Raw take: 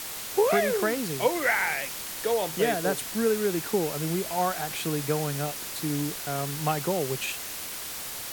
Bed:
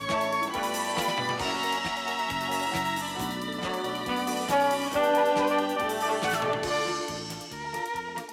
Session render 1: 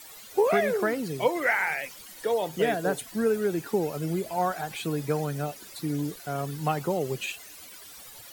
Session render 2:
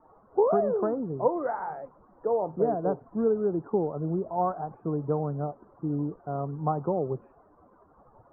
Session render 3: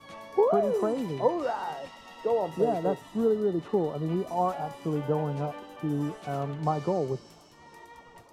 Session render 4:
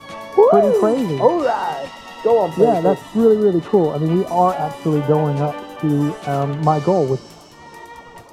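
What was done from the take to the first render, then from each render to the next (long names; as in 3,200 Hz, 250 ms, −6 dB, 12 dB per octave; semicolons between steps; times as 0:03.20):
broadband denoise 15 dB, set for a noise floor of −37 dBFS
Butterworth low-pass 1,200 Hz 48 dB per octave
mix in bed −17.5 dB
level +12 dB; brickwall limiter −1 dBFS, peak gain reduction 1.5 dB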